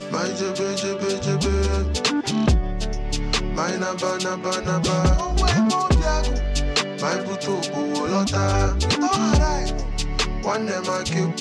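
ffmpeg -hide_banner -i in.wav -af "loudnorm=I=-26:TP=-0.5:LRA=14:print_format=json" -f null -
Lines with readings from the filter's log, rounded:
"input_i" : "-22.3",
"input_tp" : "-7.7",
"input_lra" : "1.3",
"input_thresh" : "-32.3",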